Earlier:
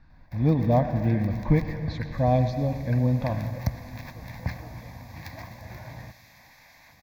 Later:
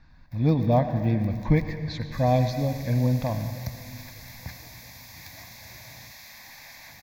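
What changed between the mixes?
first sound −9.0 dB
second sound: send on
master: add high-shelf EQ 2,700 Hz +8.5 dB

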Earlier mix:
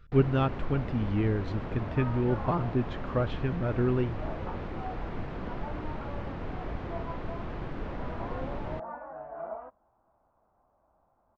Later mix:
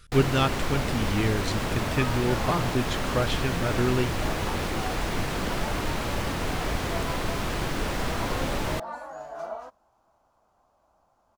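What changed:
first sound +6.0 dB
second sound: remove low-pass filter 2,400 Hz 24 dB per octave
master: remove head-to-tape spacing loss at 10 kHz 42 dB

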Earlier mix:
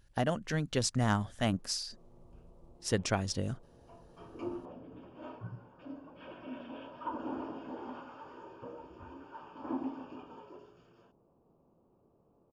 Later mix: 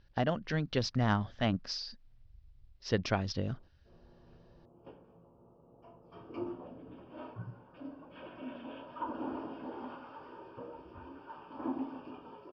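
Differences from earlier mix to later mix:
background: entry +1.95 s
master: add Butterworth low-pass 5,300 Hz 48 dB per octave

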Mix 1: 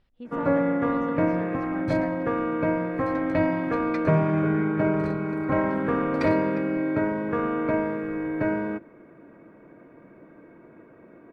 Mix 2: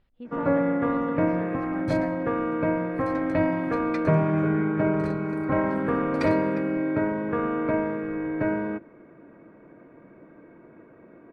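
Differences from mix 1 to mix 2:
second sound: remove high-frequency loss of the air 150 metres
master: add high-frequency loss of the air 110 metres

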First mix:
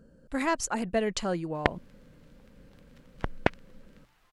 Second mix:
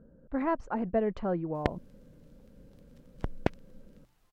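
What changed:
speech: add low-pass filter 1,100 Hz 12 dB per octave
background: add parametric band 1,800 Hz −10.5 dB 2.8 octaves

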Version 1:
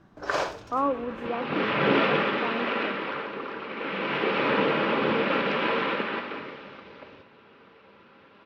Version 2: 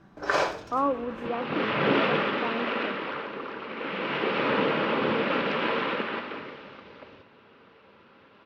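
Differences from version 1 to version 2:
first sound: send +8.5 dB
second sound: send −6.0 dB

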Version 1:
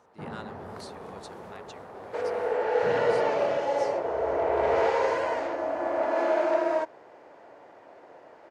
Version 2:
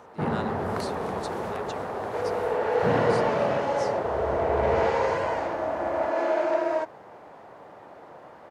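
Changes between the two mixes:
speech +5.5 dB
first sound +12.0 dB

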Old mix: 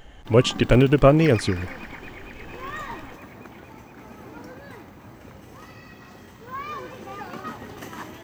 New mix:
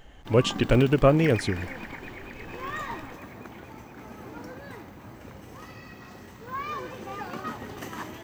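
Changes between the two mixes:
speech −4.0 dB
second sound: add phaser with its sweep stopped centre 1,100 Hz, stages 6

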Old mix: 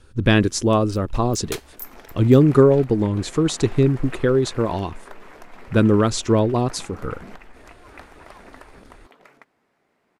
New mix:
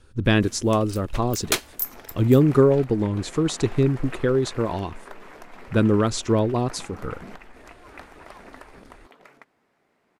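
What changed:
speech −3.0 dB
first sound +9.0 dB

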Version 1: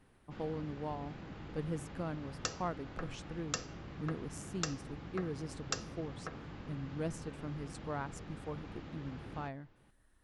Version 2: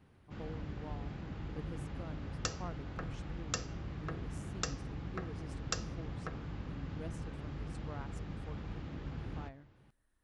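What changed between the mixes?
speech −8.5 dB
background: add low-shelf EQ 120 Hz +11.5 dB

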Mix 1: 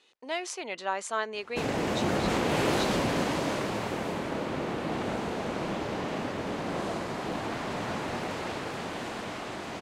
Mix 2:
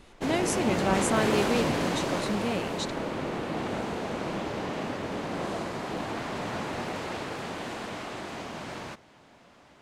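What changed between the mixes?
speech: remove band-pass filter 630–5,700 Hz
background: entry −1.35 s

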